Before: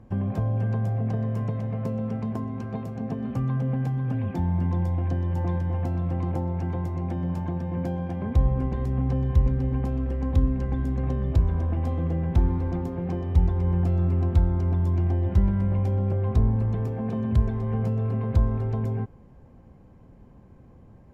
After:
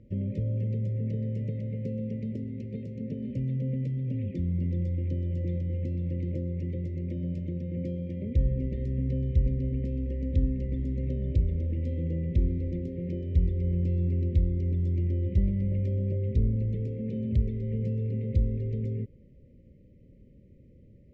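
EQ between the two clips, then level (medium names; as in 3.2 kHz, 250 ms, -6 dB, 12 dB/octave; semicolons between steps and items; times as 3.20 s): brick-wall FIR band-stop 620–1800 Hz; distance through air 110 m; -4.0 dB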